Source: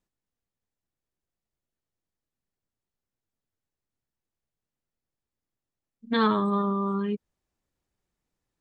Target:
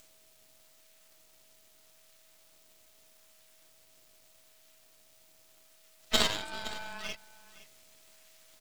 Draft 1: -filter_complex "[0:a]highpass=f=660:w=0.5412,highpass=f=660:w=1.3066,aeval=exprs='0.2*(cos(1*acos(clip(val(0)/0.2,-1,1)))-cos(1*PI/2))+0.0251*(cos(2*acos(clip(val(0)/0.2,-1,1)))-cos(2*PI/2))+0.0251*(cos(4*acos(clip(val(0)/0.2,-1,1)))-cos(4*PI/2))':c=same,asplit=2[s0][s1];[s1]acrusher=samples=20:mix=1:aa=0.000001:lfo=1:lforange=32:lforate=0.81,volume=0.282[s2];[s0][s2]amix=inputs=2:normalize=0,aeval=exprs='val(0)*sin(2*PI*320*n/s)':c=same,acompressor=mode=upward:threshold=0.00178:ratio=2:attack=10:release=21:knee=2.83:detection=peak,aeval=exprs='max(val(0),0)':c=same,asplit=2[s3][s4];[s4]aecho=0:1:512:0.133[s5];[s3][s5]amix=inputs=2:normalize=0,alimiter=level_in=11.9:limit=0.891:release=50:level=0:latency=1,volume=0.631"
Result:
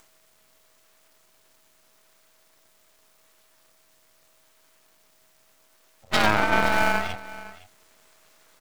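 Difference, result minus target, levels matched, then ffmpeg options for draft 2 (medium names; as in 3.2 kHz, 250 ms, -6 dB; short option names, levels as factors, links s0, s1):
2 kHz band +5.5 dB
-filter_complex "[0:a]highpass=f=2200:w=0.5412,highpass=f=2200:w=1.3066,aeval=exprs='0.2*(cos(1*acos(clip(val(0)/0.2,-1,1)))-cos(1*PI/2))+0.0251*(cos(2*acos(clip(val(0)/0.2,-1,1)))-cos(2*PI/2))+0.0251*(cos(4*acos(clip(val(0)/0.2,-1,1)))-cos(4*PI/2))':c=same,asplit=2[s0][s1];[s1]acrusher=samples=20:mix=1:aa=0.000001:lfo=1:lforange=32:lforate=0.81,volume=0.282[s2];[s0][s2]amix=inputs=2:normalize=0,aeval=exprs='val(0)*sin(2*PI*320*n/s)':c=same,acompressor=mode=upward:threshold=0.00178:ratio=2:attack=10:release=21:knee=2.83:detection=peak,aeval=exprs='max(val(0),0)':c=same,asplit=2[s3][s4];[s4]aecho=0:1:512:0.133[s5];[s3][s5]amix=inputs=2:normalize=0,alimiter=level_in=11.9:limit=0.891:release=50:level=0:latency=1,volume=0.631"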